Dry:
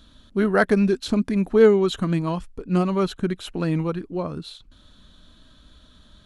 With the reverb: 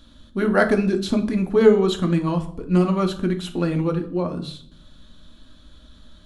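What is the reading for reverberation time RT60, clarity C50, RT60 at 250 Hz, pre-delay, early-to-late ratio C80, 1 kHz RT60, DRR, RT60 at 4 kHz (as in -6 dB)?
0.60 s, 13.0 dB, 0.90 s, 4 ms, 16.5 dB, 0.60 s, 4.5 dB, 0.45 s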